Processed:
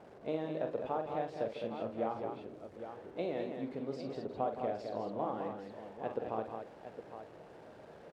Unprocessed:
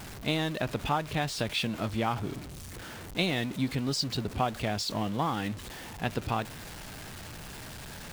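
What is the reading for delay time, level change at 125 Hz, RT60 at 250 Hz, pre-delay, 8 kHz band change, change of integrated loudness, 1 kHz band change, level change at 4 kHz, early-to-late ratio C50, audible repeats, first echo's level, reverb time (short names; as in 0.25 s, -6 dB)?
45 ms, -16.5 dB, none, none, under -25 dB, -8.0 dB, -6.5 dB, -23.5 dB, none, 4, -7.5 dB, none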